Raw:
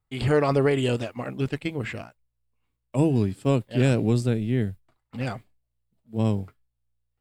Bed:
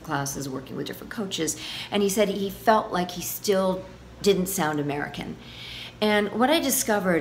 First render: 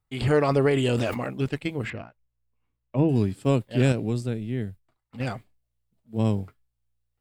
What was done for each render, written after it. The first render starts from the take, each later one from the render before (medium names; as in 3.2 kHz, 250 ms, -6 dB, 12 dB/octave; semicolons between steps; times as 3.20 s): 0.73–1.28 s: decay stretcher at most 26 dB/s; 1.90–3.09 s: distance through air 280 m; 3.92–5.20 s: gain -5 dB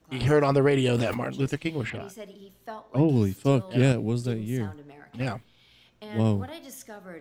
add bed -20 dB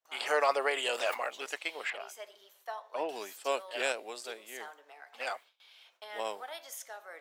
high-pass 610 Hz 24 dB/octave; gate with hold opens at -51 dBFS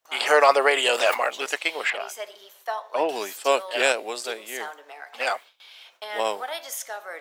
trim +11 dB